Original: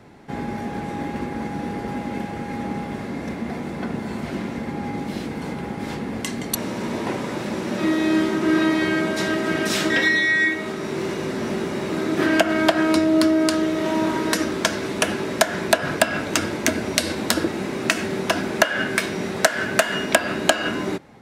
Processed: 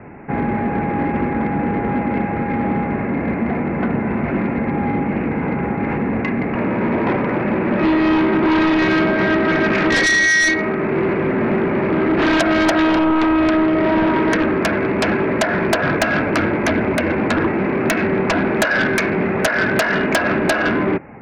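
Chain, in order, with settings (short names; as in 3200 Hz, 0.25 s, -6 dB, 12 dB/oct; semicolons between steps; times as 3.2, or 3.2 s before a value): steep low-pass 2600 Hz 96 dB/oct; in parallel at -12 dB: sine folder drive 19 dB, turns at 0 dBFS; on the sum: gain -3.5 dB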